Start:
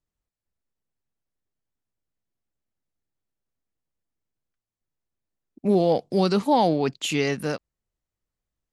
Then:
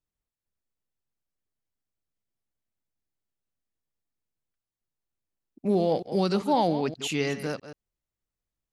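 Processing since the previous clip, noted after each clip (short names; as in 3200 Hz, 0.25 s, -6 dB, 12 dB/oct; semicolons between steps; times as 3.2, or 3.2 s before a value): reverse delay 0.131 s, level -12 dB; gain -4 dB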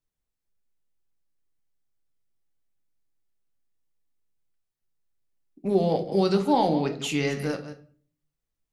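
shoebox room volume 42 m³, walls mixed, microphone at 0.33 m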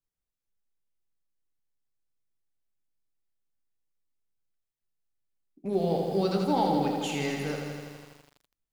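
lo-fi delay 82 ms, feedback 80%, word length 8-bit, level -5.5 dB; gain -5.5 dB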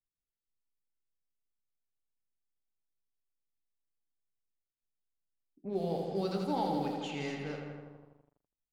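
low-pass opened by the level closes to 590 Hz, open at -23 dBFS; gain -7 dB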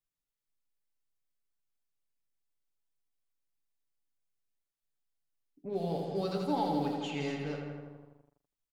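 comb 7 ms, depth 43%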